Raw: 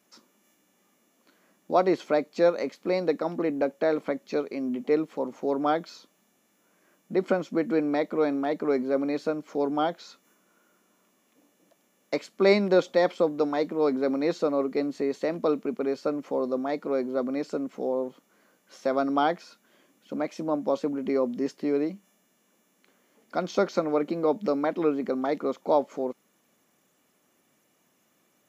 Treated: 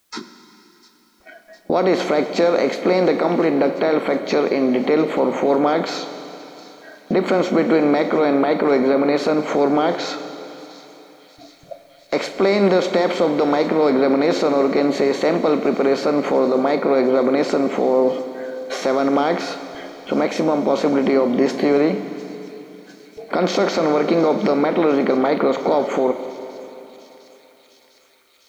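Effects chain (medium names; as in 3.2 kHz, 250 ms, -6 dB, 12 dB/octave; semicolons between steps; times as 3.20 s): spectral levelling over time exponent 0.6; gate with hold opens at -33 dBFS; spectral noise reduction 25 dB; in parallel at -2 dB: compression, threshold -32 dBFS, peak gain reduction 17.5 dB; on the sum: peak limiter -15 dBFS, peak gain reduction 10 dB; word length cut 12-bit, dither triangular; on a send: feedback echo behind a high-pass 703 ms, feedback 81%, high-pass 3.5 kHz, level -17 dB; on the sum: Schroeder reverb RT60 3.4 s, combs from 33 ms, DRR 9 dB; trim +7 dB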